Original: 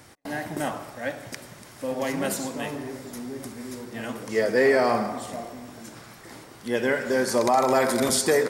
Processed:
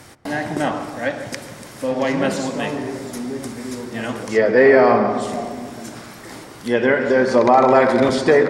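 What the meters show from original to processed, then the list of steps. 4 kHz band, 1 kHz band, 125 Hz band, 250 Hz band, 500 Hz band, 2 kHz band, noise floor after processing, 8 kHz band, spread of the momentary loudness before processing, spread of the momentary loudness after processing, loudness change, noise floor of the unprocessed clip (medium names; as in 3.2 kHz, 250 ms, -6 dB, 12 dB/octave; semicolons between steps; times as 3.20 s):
+2.0 dB, +7.5 dB, +8.0 dB, +8.0 dB, +8.0 dB, +7.0 dB, -39 dBFS, -4.5 dB, 20 LU, 20 LU, +7.5 dB, -47 dBFS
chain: low-pass that closes with the level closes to 2.8 kHz, closed at -20.5 dBFS; filtered feedback delay 140 ms, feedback 65%, low-pass 1.1 kHz, level -10.5 dB; trim +7.5 dB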